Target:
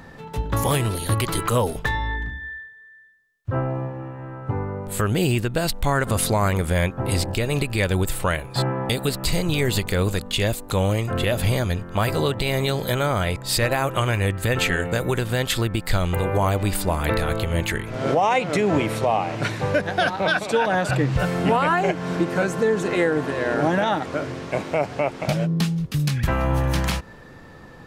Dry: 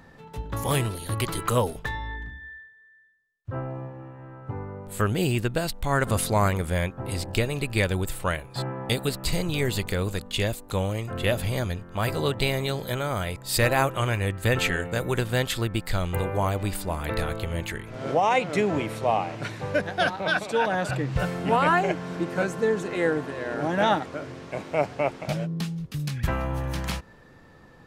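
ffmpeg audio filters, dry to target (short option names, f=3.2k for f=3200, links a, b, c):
-filter_complex "[0:a]asettb=1/sr,asplit=3[a][b][c];[a]atrim=end=13.064[d];[b]atrim=start=13.06:end=13.71,asetpts=PTS-STARTPTS,afade=t=in:d=0.004:c=qsin,afade=t=out:st=0.646:d=0.004:c=qsin,highshelf=f=9.1k:g=-8[e];[c]atrim=start=13.706[f];[d][e]acrossfade=d=0.004:c1=hsin:c2=qsin[g];[g][f]acrossfade=d=0.004:c1=qsin:c2=hsin,alimiter=limit=-18.5dB:level=0:latency=1:release=180,volume=8dB"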